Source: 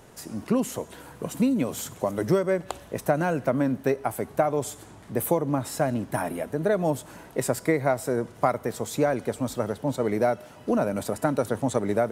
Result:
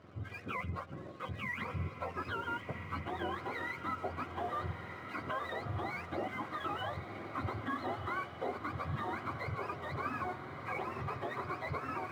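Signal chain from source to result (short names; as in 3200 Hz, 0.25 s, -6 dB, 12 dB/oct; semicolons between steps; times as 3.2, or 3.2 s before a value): spectrum mirrored in octaves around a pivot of 730 Hz; in parallel at +1 dB: compressor, threshold -39 dBFS, peak gain reduction 18 dB; on the sum: limiter -21.5 dBFS, peak gain reduction 10 dB; LPF 1900 Hz 12 dB/oct; notch comb 890 Hz; crossover distortion -55 dBFS; on a send: diffused feedback echo 1.322 s, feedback 61%, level -8 dB; on the sum: gain -5 dB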